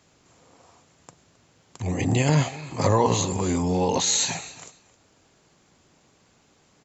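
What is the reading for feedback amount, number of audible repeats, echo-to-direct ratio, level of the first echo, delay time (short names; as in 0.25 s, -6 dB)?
17%, 2, -19.0 dB, -19.0 dB, 0.266 s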